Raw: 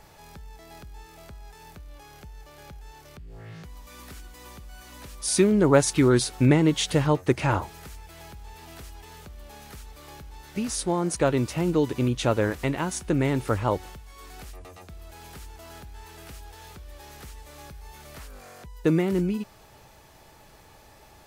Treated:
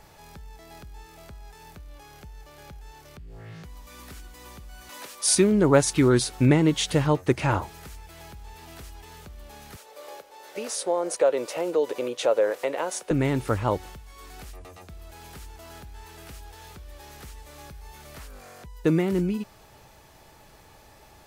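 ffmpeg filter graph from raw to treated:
-filter_complex "[0:a]asettb=1/sr,asplit=3[s0][s1][s2];[s0]atrim=end=4.894[s3];[s1]atrim=start=4.89:end=5.35,asetpts=PTS-STARTPTS,afade=t=in:d=0.004:c=qsin,afade=t=out:st=0.456:d=0.004:c=qsin,highpass=420,acontrast=41[s4];[s2]atrim=start=5.346[s5];[s3][s4]acrossfade=d=0.004:c1=hsin:c2=qsin[s6];[s6][s5]acrossfade=d=0.004:c1=qsin:c2=hsin,asettb=1/sr,asplit=3[s7][s8][s9];[s7]atrim=end=9.764[s10];[s8]atrim=start=9.76:end=13.11,asetpts=PTS-STARTPTS,afade=t=in:d=0.004:c=qsin,afade=t=out:st=3.346:d=0.004:c=qsin,highpass=f=520:t=q:w=4.1,acompressor=threshold=0.0447:ratio=1.5:attack=3.2:release=140:knee=1:detection=peak[s11];[s9]atrim=start=13.106[s12];[s10][s11]acrossfade=d=0.004:c1=hsin:c2=qsin[s13];[s13][s12]acrossfade=d=0.004:c1=qsin:c2=hsin"

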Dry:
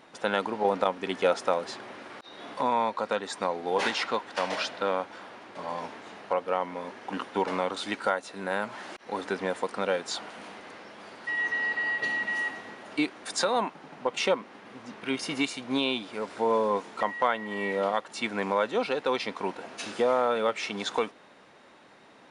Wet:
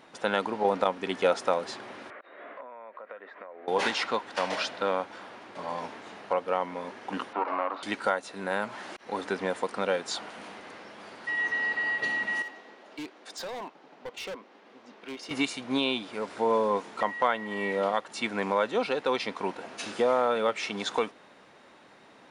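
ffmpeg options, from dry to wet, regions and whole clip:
-filter_complex "[0:a]asettb=1/sr,asplit=3[s0][s1][s2];[s0]atrim=end=2.104[s3];[s1]atrim=start=2.1:end=3.68,asetpts=PTS-STARTPTS,afade=t=in:d=0.004:c=qsin,afade=t=out:st=1.576:d=0.004:c=qsin,acompressor=threshold=0.0141:ratio=12:attack=3.2:release=140:knee=1:detection=peak,highpass=440,equalizer=f=600:t=q:w=4:g=5,equalizer=f=850:t=q:w=4:g=-9,equalizer=f=1900:t=q:w=4:g=3,lowpass=f=2200:w=0.5412,lowpass=f=2200:w=1.3066[s4];[s2]atrim=start=3.676[s5];[s3][s4]acrossfade=d=0.004:c1=hsin:c2=qsin[s6];[s6][s5]acrossfade=d=0.004:c1=qsin:c2=hsin,asettb=1/sr,asplit=3[s7][s8][s9];[s7]atrim=end=7.334[s10];[s8]atrim=start=7.33:end=7.83,asetpts=PTS-STARTPTS,afade=t=in:d=0.004:c=qsin,afade=t=out:st=0.496:d=0.004:c=qsin,aeval=exprs='clip(val(0),-1,0.0168)':c=same,highpass=f=260:w=0.5412,highpass=f=260:w=1.3066,equalizer=f=430:t=q:w=4:g=-7,equalizer=f=680:t=q:w=4:g=5,equalizer=f=1100:t=q:w=4:g=9,equalizer=f=1700:t=q:w=4:g=-3,equalizer=f=3400:t=q:w=4:g=-9,lowpass=f=4000:w=0.5412,lowpass=f=4000:w=1.3066,acrossover=split=2900[s11][s12];[s12]acompressor=threshold=0.00112:ratio=4:attack=1:release=60[s13];[s11][s13]amix=inputs=2:normalize=0[s14];[s9]atrim=start=7.826[s15];[s10][s14]acrossfade=d=0.004:c1=hsin:c2=qsin[s16];[s16][s15]acrossfade=d=0.004:c1=qsin:c2=hsin,asettb=1/sr,asplit=3[s17][s18][s19];[s17]atrim=end=12.424[s20];[s18]atrim=start=12.42:end=15.31,asetpts=PTS-STARTPTS,afade=t=in:d=0.004:c=qsin,afade=t=out:st=2.886:d=0.004:c=qsin,highpass=380,lowpass=4800,equalizer=f=1600:w=0.4:g=-8.5,asoftclip=type=hard:threshold=0.0188[s21];[s19]atrim=start=15.306[s22];[s20][s21]acrossfade=d=0.004:c1=hsin:c2=qsin[s23];[s23][s22]acrossfade=d=0.004:c1=qsin:c2=hsin"

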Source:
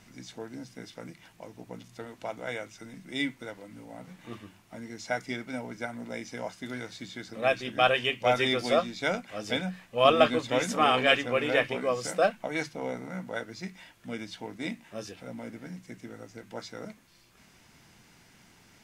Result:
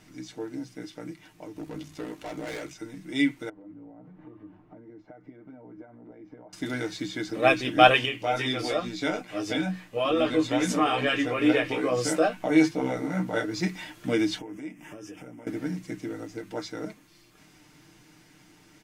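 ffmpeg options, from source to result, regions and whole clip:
-filter_complex "[0:a]asettb=1/sr,asplit=3[s0][s1][s2];[s0]atrim=end=1.564[s3];[s1]atrim=start=1.56:end=2.74,asetpts=PTS-STARTPTS,afade=t=in:d=0.004:c=qsin,afade=t=out:st=1.176:d=0.004:c=qsin,acontrast=88,aeval=exprs='val(0)*sin(2*PI*31*n/s)':c=same,volume=53.1,asoftclip=hard,volume=0.0188[s4];[s2]atrim=start=2.736[s5];[s3][s4]acrossfade=d=0.004:c1=hsin:c2=qsin[s6];[s6][s5]acrossfade=d=0.004:c1=qsin:c2=hsin,asettb=1/sr,asplit=3[s7][s8][s9];[s7]atrim=end=3.494[s10];[s8]atrim=start=3.49:end=6.53,asetpts=PTS-STARTPTS,afade=t=in:d=0.004:c=qsin,afade=t=out:st=3.036:d=0.004:c=qsin,acompressor=threshold=0.00316:ratio=8:attack=3.2:release=140:knee=1:detection=peak,lowpass=1000[s11];[s9]atrim=start=6.526[s12];[s10][s11]acrossfade=d=0.004:c1=hsin:c2=qsin[s13];[s13][s12]acrossfade=d=0.004:c1=qsin:c2=hsin,asettb=1/sr,asplit=3[s14][s15][s16];[s14]atrim=end=8.054[s17];[s15]atrim=start=8.05:end=13.54,asetpts=PTS-STARTPTS,afade=t=in:d=0.004:c=qsin,afade=t=out:st=5.486:d=0.004:c=qsin,acompressor=threshold=0.0398:ratio=2.5:attack=3.2:release=140:knee=1:detection=peak,flanger=delay=16:depth=3:speed=2.3[s18];[s16]atrim=start=13.536[s19];[s17][s18]acrossfade=d=0.004:c1=hsin:c2=qsin[s20];[s20][s19]acrossfade=d=0.004:c1=qsin:c2=hsin,asettb=1/sr,asplit=3[s21][s22][s23];[s21]atrim=end=14.384[s24];[s22]atrim=start=14.38:end=15.47,asetpts=PTS-STARTPTS,afade=t=in:d=0.004:c=qsin,afade=t=out:st=1.086:d=0.004:c=qsin,acompressor=threshold=0.00355:ratio=10:attack=3.2:release=140:knee=1:detection=peak,asuperstop=centerf=4100:order=4:qfactor=2[s25];[s23]atrim=start=15.466[s26];[s24][s25]acrossfade=d=0.004:c1=hsin:c2=qsin[s27];[s27][s26]acrossfade=d=0.004:c1=qsin:c2=hsin,equalizer=f=320:w=3.8:g=10.5,aecho=1:1:6.6:0.54,dynaudnorm=f=390:g=21:m=3.76,volume=0.891"

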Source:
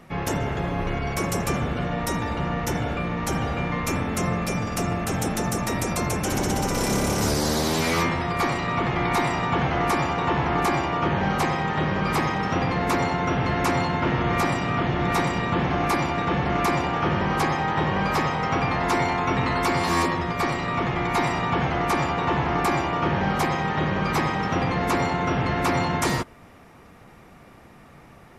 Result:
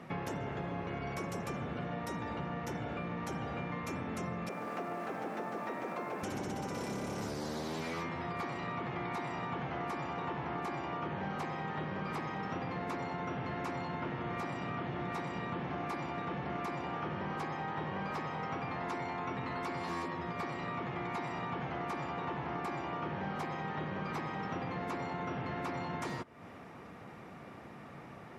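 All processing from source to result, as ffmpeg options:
-filter_complex "[0:a]asettb=1/sr,asplit=3[s0][s1][s2];[s0]atrim=end=4.494[s3];[s1]atrim=start=4.49:end=6.23,asetpts=PTS-STARTPTS,afade=t=in:d=0.004:c=qsin,afade=t=out:st=1.736:d=0.004:c=qsin,highpass=320,lowpass=2100,acrusher=bits=8:dc=4:mix=0:aa=0.000001[s4];[s2]atrim=start=6.226[s5];[s3][s4]acrossfade=d=0.004:c1=hsin:c2=qsin[s6];[s6][s5]acrossfade=d=0.004:c1=qsin:c2=hsin,highpass=110,acompressor=threshold=0.0158:ratio=6,lowpass=f=3000:p=1"

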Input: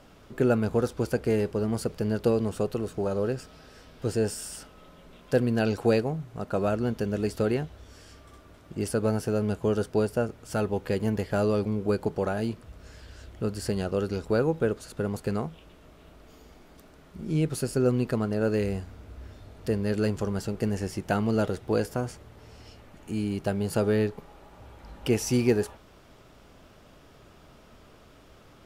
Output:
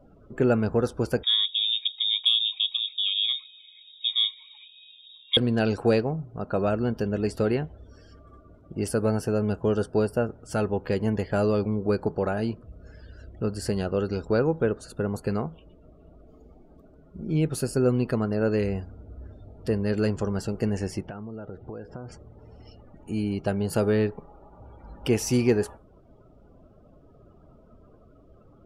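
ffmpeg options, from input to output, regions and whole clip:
-filter_complex "[0:a]asettb=1/sr,asplit=3[s0][s1][s2];[s0]atrim=end=1.234[s3];[s1]atrim=start=1.23:end=5.37,asetpts=PTS-STARTPTS,afade=t=in:d=0.004:c=qsin,afade=t=out:st=4.136:d=0.004:c=qsin,highshelf=f=2700:g=-11,lowpass=f=3200:t=q:w=0.5098,lowpass=f=3200:t=q:w=0.6013,lowpass=f=3200:t=q:w=0.9,lowpass=f=3200:t=q:w=2.563,afreqshift=-3800[s4];[s2]atrim=start=5.366[s5];[s3][s4]acrossfade=d=0.004:c1=hsin:c2=qsin[s6];[s6][s5]acrossfade=d=0.004:c1=qsin:c2=hsin,asettb=1/sr,asplit=3[s7][s8][s9];[s7]atrim=end=21.014[s10];[s8]atrim=start=21.01:end=22.12,asetpts=PTS-STARTPTS,afade=t=in:d=0.004:c=qsin,afade=t=out:st=1.106:d=0.004:c=qsin,lowpass=4100,acompressor=threshold=0.0178:ratio=16:attack=3.2:release=140:knee=1:detection=peak[s11];[s9]atrim=start=22.116[s12];[s10][s11]acrossfade=d=0.004:c1=hsin:c2=qsin[s13];[s13][s12]acrossfade=d=0.004:c1=qsin:c2=hsin,acontrast=55,afftdn=nr=25:nf=-45,volume=0.596"

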